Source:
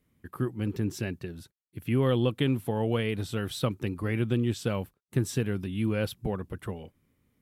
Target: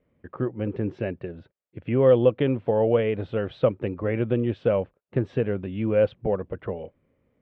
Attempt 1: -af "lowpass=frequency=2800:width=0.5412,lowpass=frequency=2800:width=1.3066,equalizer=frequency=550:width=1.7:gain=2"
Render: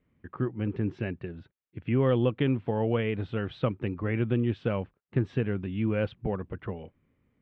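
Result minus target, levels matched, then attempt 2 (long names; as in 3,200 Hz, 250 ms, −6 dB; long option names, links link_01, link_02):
500 Hz band −3.5 dB
-af "lowpass=frequency=2800:width=0.5412,lowpass=frequency=2800:width=1.3066,equalizer=frequency=550:width=1.7:gain=13.5"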